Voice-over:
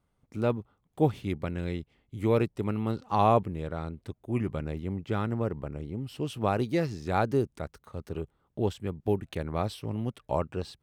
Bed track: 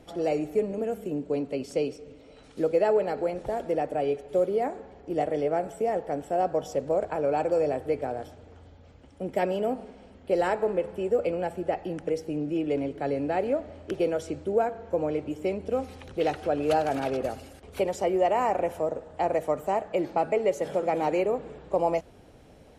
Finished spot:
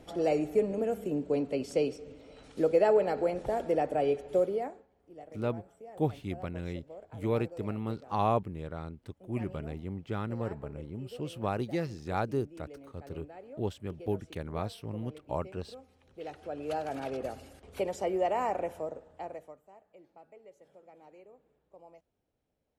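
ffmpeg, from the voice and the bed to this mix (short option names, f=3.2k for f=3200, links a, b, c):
-filter_complex "[0:a]adelay=5000,volume=-5dB[a];[1:a]volume=15dB,afade=t=out:st=4.3:d=0.56:silence=0.0944061,afade=t=in:st=16:d=1.44:silence=0.158489,afade=t=out:st=18.48:d=1.12:silence=0.0630957[b];[a][b]amix=inputs=2:normalize=0"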